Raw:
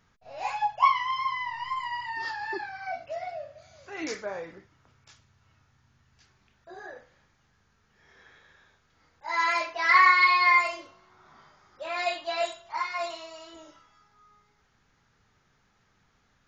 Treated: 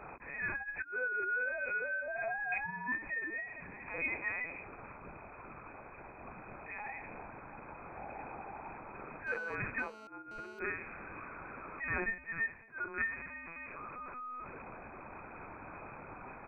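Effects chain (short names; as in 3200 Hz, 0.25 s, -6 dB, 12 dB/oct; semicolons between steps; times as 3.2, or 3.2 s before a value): switching spikes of -21 dBFS; 0.58–2.02 low shelf 340 Hz +10.5 dB; 12.04–12.99 expander -21 dBFS; negative-ratio compressor -28 dBFS, ratio -0.5; doubler 16 ms -8 dB; LPC vocoder at 8 kHz pitch kept; inverted band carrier 2500 Hz; 9.27–10.59 GSM buzz -48 dBFS; gain -6.5 dB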